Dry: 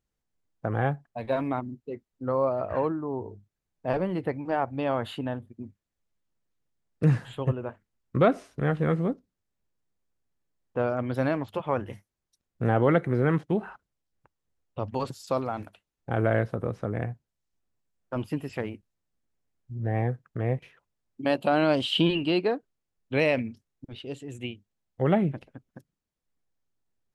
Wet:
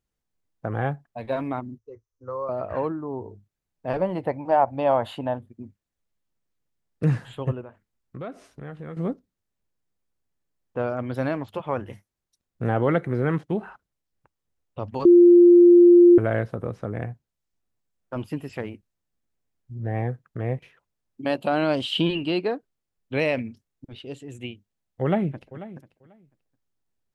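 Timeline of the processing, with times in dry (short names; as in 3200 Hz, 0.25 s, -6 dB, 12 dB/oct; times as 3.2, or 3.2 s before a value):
1.78–2.49 EQ curve 110 Hz 0 dB, 170 Hz -27 dB, 480 Hz -2 dB, 720 Hz -16 dB, 1100 Hz -1 dB, 1800 Hz -13 dB, 2900 Hz -19 dB, 4200 Hz -14 dB, 6100 Hz +6 dB, 8900 Hz -23 dB
4.01–5.38 band shelf 750 Hz +9 dB 1.1 oct
7.61–8.97 compressor 2:1, threshold -44 dBFS
15.05–16.18 bleep 349 Hz -8.5 dBFS
25.02–25.64 echo throw 0.49 s, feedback 15%, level -16 dB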